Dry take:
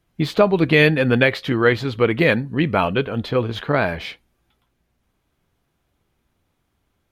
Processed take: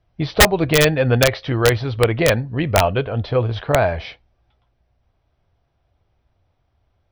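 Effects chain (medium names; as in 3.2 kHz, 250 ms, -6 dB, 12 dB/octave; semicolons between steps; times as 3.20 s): brick-wall FIR low-pass 6.1 kHz; peaking EQ 660 Hz +9.5 dB 0.89 oct; integer overflow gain 1.5 dB; resonant low shelf 140 Hz +8.5 dB, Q 1.5; trim -3 dB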